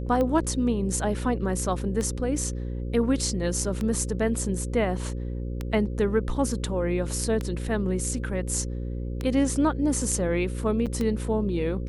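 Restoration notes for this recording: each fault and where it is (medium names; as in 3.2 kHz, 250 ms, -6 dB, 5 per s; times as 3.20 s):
buzz 60 Hz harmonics 9 -31 dBFS
tick 33 1/3 rpm -16 dBFS
3.64 s: dropout 3.1 ms
10.86–10.87 s: dropout 6.8 ms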